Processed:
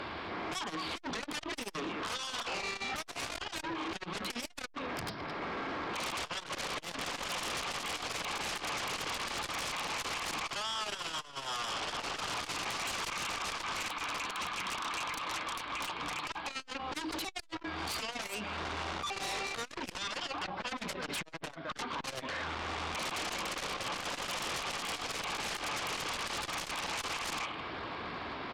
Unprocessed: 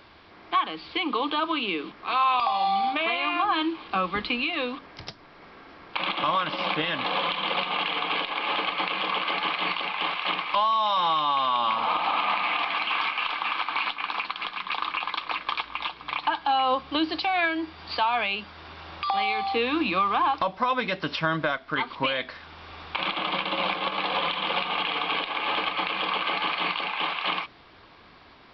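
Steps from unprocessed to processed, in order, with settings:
downward compressor 3 to 1, threshold −39 dBFS, peak gain reduction 14.5 dB
high-pass filter 84 Hz 6 dB per octave
high-shelf EQ 4,500 Hz −11.5 dB
single-tap delay 213 ms −16 dB
brickwall limiter −31 dBFS, peak gain reduction 8.5 dB
0:26.60–0:27.01: low-shelf EQ 250 Hz +8.5 dB
sine wavefolder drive 13 dB, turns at −29.5 dBFS
mains-hum notches 50/100/150/200 Hz
saturating transformer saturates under 250 Hz
level −3 dB

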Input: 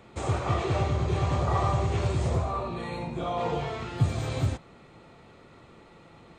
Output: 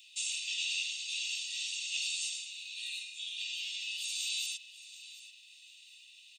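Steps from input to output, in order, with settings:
Butterworth high-pass 2,600 Hz 72 dB per octave
comb filter 1.1 ms, depth 79%
repeating echo 735 ms, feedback 28%, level −16 dB
level +8.5 dB

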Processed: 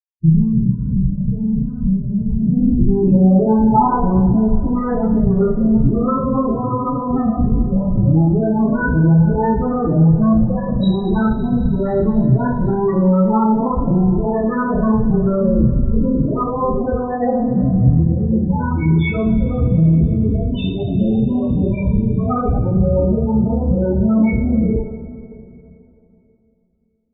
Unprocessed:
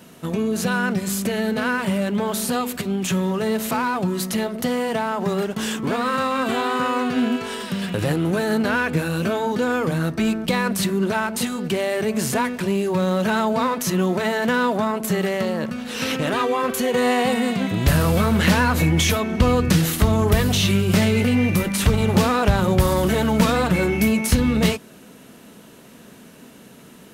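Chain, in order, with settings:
comparator with hysteresis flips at −23.5 dBFS
speech leveller 0.5 s
hum removal 97.79 Hz, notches 35
spectral peaks only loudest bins 8
low-pass filter sweep 140 Hz → 4,200 Hz, 0:02.30–0:04.83
coupled-rooms reverb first 0.46 s, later 3.1 s, from −18 dB, DRR −9 dB
level −1 dB

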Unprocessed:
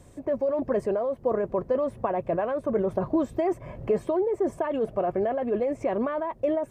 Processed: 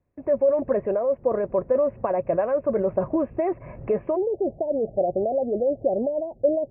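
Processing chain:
noise gate −46 dBFS, range −23 dB
Butterworth low-pass 2,700 Hz 96 dB per octave, from 0:04.15 820 Hz
dynamic equaliser 560 Hz, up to +7 dB, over −39 dBFS, Q 5.3

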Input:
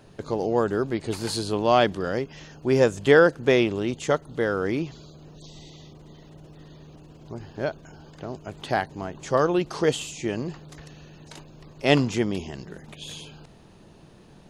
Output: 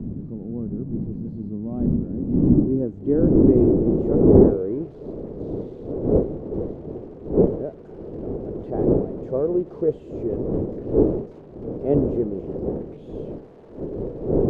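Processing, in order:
spike at every zero crossing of −11 dBFS
wind on the microphone 420 Hz −21 dBFS
low-pass filter sweep 220 Hz → 440 Hz, 0:01.62–0:04.60
level −5 dB

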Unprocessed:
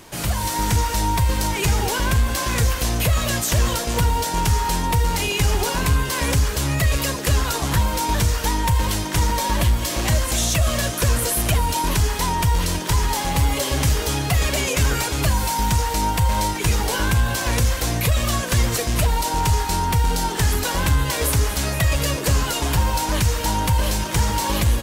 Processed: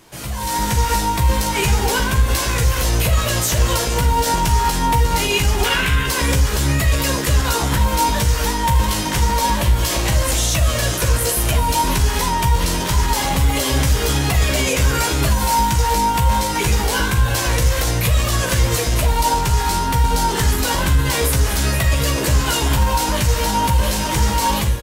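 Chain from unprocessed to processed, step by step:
0:05.64–0:06.06: flat-topped bell 2,100 Hz +11 dB
brickwall limiter −16 dBFS, peak gain reduction 11.5 dB
automatic gain control gain up to 11 dB
double-tracking delay 15 ms −5.5 dB
on a send: convolution reverb RT60 0.35 s, pre-delay 35 ms, DRR 9 dB
on the sum: level −5.5 dB

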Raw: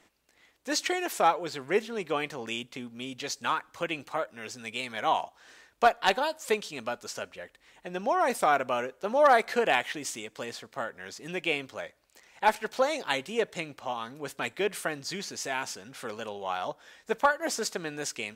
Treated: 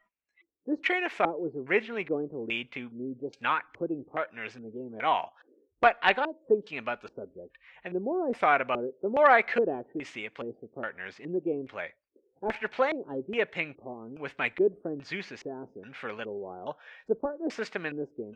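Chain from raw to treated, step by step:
auto-filter low-pass square 1.2 Hz 380–2,300 Hz
noise reduction from a noise print of the clip's start 23 dB
level −1 dB

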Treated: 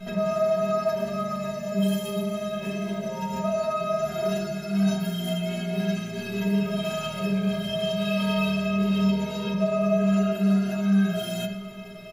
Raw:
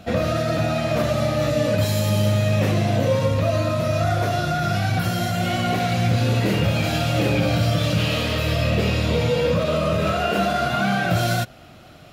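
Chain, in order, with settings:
comb filter 5 ms, depth 84%
in parallel at +3 dB: compressor whose output falls as the input rises −26 dBFS, ratio −0.5
on the sum: steady tone 2,100 Hz −46 dBFS
flanger 0.26 Hz, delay 0.6 ms, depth 4.8 ms, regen +84%
hum with harmonics 60 Hz, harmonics 8, −39 dBFS
stiff-string resonator 190 Hz, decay 0.46 s, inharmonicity 0.03
on a send at −2 dB: convolution reverb RT60 0.90 s, pre-delay 3 ms
on the sum: level +3.5 dB

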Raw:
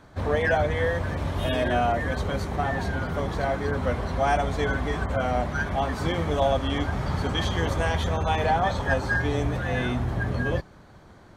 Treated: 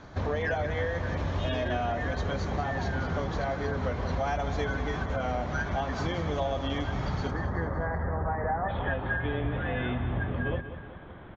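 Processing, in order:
downward compressor 6 to 1, threshold −31 dBFS, peak gain reduction 12.5 dB
Butterworth low-pass 7,000 Hz 96 dB per octave, from 0:07.30 2,000 Hz, from 0:08.68 3,600 Hz
repeating echo 188 ms, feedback 49%, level −11.5 dB
level +3.5 dB

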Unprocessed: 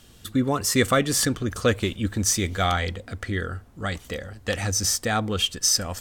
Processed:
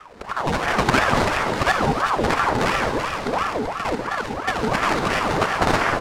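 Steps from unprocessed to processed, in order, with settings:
reversed piece by piece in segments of 52 ms
comb filter 1.8 ms, depth 81%
in parallel at +2 dB: downward compressor, threshold −34 dBFS, peak gain reduction 19.5 dB
on the sum: sample-rate reduction 2,800 Hz, jitter 20%
high-frequency loss of the air 59 metres
on a send: delay that swaps between a low-pass and a high-pass 193 ms, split 1,000 Hz, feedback 63%, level −2.5 dB
on the sum: four-comb reverb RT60 2.2 s, combs from 28 ms, DRR 3.5 dB
ring modulator whose carrier an LFO sweeps 800 Hz, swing 60%, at 2.9 Hz

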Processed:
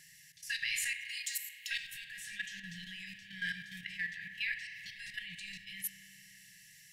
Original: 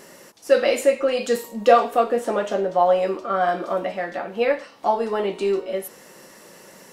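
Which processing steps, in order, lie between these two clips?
linear-phase brick-wall band-stop 170–1,600 Hz
output level in coarse steps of 12 dB
0:00.93–0:01.71: first difference
spring reverb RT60 3.3 s, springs 31 ms, chirp 75 ms, DRR 7 dB
level +1 dB

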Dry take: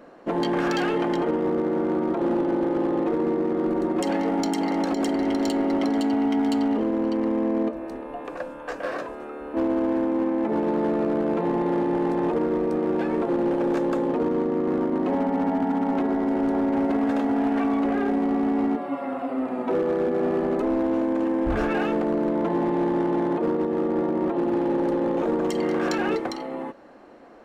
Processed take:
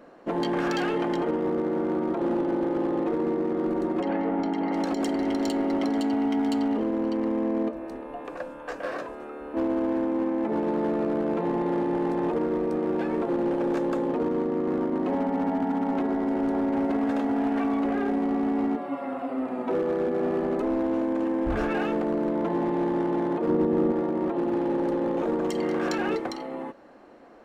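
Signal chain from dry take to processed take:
0:04.00–0:04.73: low-pass filter 2,300 Hz 12 dB per octave
0:23.49–0:23.92: low-shelf EQ 320 Hz +9 dB
level −2.5 dB

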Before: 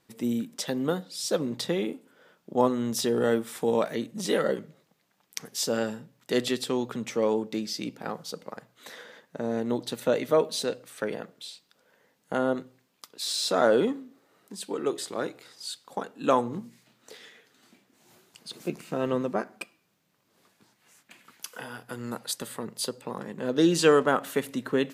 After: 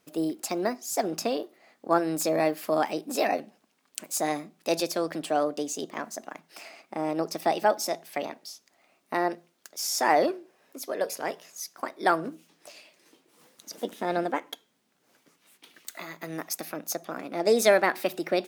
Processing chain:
wrong playback speed 33 rpm record played at 45 rpm

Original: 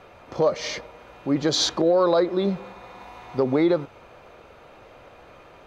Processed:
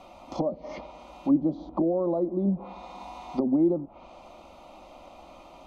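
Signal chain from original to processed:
treble cut that deepens with the level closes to 390 Hz, closed at −20.5 dBFS
phaser with its sweep stopped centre 440 Hz, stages 6
healed spectral selection 0:00.50–0:00.74, 1,900–4,900 Hz both
level +3 dB

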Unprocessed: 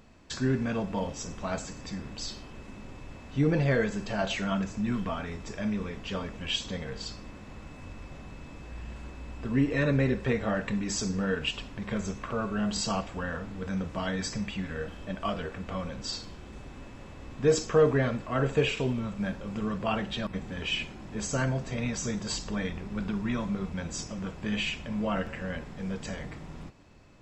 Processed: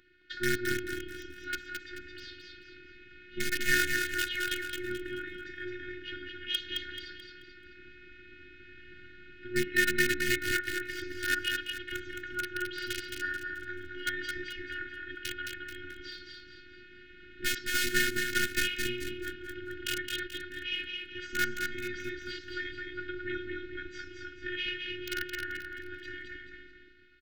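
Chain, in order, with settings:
stylus tracing distortion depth 0.052 ms
loudspeaker in its box 180–3,300 Hz, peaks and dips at 200 Hz −3 dB, 290 Hz −9 dB, 810 Hz −5 dB, 1,500 Hz +4 dB, 2,500 Hz −8 dB
in parallel at −3.5 dB: bit reduction 4 bits
on the sum: brick-wall band-stop 290–1,400 Hz
on a send: repeating echo 217 ms, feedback 38%, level −4.5 dB
on the sum: phases set to zero 360 Hz
level +4.5 dB

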